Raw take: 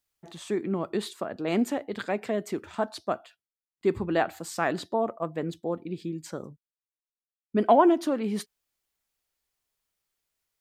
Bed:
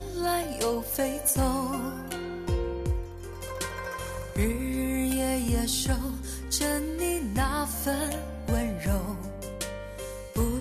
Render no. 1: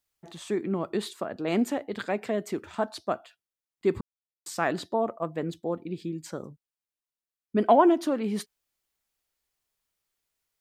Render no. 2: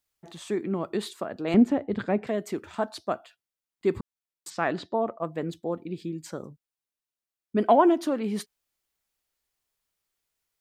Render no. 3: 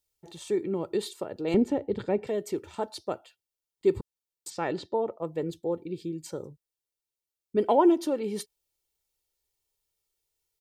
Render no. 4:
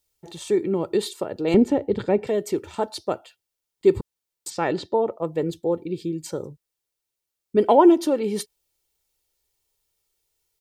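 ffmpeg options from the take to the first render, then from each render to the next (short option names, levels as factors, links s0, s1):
-filter_complex "[0:a]asplit=3[s0][s1][s2];[s0]atrim=end=4.01,asetpts=PTS-STARTPTS,afade=t=out:st=4.006:d=0.004:c=hsin[s3];[s1]atrim=start=4.01:end=4.46,asetpts=PTS-STARTPTS,volume=0[s4];[s2]atrim=start=4.46,asetpts=PTS-STARTPTS,afade=t=in:d=0.004:c=hsin[s5];[s3][s4][s5]concat=n=3:v=0:a=1"
-filter_complex "[0:a]asettb=1/sr,asplit=3[s0][s1][s2];[s0]atrim=end=1.544[s3];[s1]atrim=start=1.54:end=2.27,asetpts=PTS-STARTPTS,afade=t=in:d=0.004:c=qsin,afade=t=out:st=0.726:d=0.004:c=qsin,aemphasis=mode=reproduction:type=riaa[s4];[s2]atrim=start=2.266[s5];[s3][s4]acrossfade=d=0.004:c1=hsin:c2=qsin[s6];[s6][s5]acrossfade=d=0.004:c1=qsin:c2=hsin,asplit=3[s7][s8][s9];[s7]afade=t=out:st=4.49:d=0.02[s10];[s8]lowpass=4500,afade=t=in:st=4.49:d=0.02,afade=t=out:st=5.22:d=0.02[s11];[s9]afade=t=in:st=5.22:d=0.02[s12];[s10][s11][s12]amix=inputs=3:normalize=0"
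-af "equalizer=f=1500:t=o:w=1.4:g=-9.5,aecho=1:1:2.2:0.52"
-af "volume=2.11"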